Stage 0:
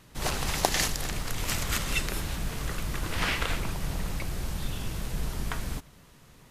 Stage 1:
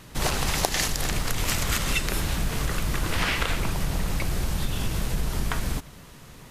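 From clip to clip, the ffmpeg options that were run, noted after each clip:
ffmpeg -i in.wav -af "acompressor=threshold=-30dB:ratio=4,volume=8.5dB" out.wav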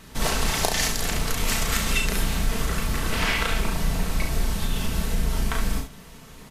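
ffmpeg -i in.wav -af "aecho=1:1:4.5:0.41,aecho=1:1:35|69:0.596|0.422,volume=-1dB" out.wav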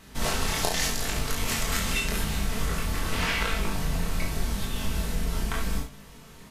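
ffmpeg -i in.wav -af "flanger=delay=20:depth=3.7:speed=0.84" out.wav

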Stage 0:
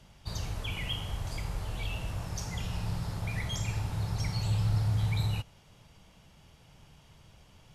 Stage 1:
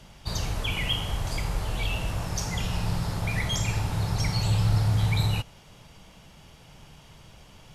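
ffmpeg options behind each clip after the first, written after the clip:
ffmpeg -i in.wav -af "equalizer=frequency=87:width=1.1:gain=-4,volume=8dB" out.wav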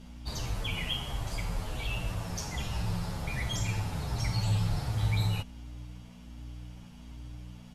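ffmpeg -i in.wav -filter_complex "[0:a]aeval=exprs='val(0)+0.0126*(sin(2*PI*60*n/s)+sin(2*PI*2*60*n/s)/2+sin(2*PI*3*60*n/s)/3+sin(2*PI*4*60*n/s)/4+sin(2*PI*5*60*n/s)/5)':channel_layout=same,asplit=2[link_01][link_02];[link_02]adelay=8.9,afreqshift=-1.3[link_03];[link_01][link_03]amix=inputs=2:normalize=1,volume=-2.5dB" out.wav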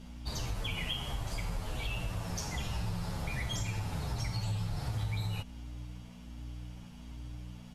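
ffmpeg -i in.wav -af "acompressor=threshold=-31dB:ratio=6" out.wav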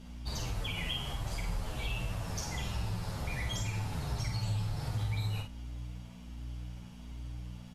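ffmpeg -i in.wav -filter_complex "[0:a]asplit=2[link_01][link_02];[link_02]adelay=49,volume=-6dB[link_03];[link_01][link_03]amix=inputs=2:normalize=0,volume=-1dB" out.wav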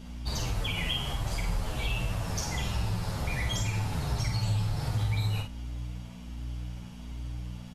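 ffmpeg -i in.wav -af "aresample=32000,aresample=44100,volume=5dB" out.wav

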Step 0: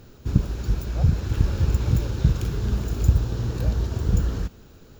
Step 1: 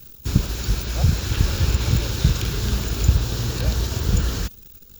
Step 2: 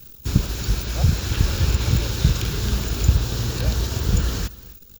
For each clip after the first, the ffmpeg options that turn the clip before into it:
ffmpeg -i in.wav -filter_complex "[0:a]crystalizer=i=8.5:c=0,acrossover=split=4800[link_01][link_02];[link_02]acompressor=threshold=-34dB:ratio=4:attack=1:release=60[link_03];[link_01][link_03]amix=inputs=2:normalize=0,anlmdn=1,volume=1dB" out.wav
ffmpeg -i in.wav -af "aecho=1:1:263:0.1" out.wav

